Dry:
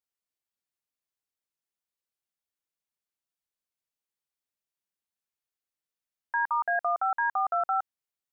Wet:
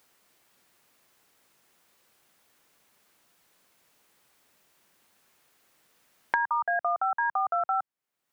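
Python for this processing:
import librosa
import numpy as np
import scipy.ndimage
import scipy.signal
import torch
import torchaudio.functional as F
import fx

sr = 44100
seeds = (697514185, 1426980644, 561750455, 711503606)

y = fx.band_squash(x, sr, depth_pct=100)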